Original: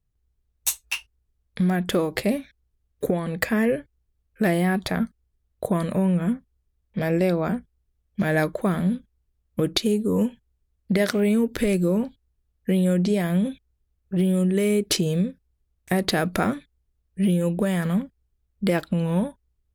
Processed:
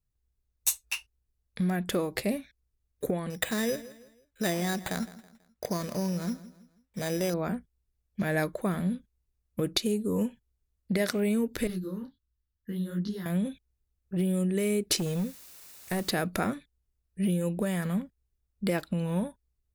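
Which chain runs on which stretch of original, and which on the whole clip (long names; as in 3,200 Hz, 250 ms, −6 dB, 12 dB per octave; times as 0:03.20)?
0:03.30–0:07.34: low-shelf EQ 330 Hz −4 dB + bad sample-rate conversion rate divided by 8×, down none, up hold + repeating echo 163 ms, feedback 38%, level −17 dB
0:11.67–0:13.26: phaser with its sweep stopped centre 2,400 Hz, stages 6 + micro pitch shift up and down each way 49 cents
0:14.97–0:16.11: hard clipping −19 dBFS + bit-depth reduction 8 bits, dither triangular
whole clip: high-shelf EQ 4,100 Hz +5 dB; notch filter 3,200 Hz, Q 16; level −6.5 dB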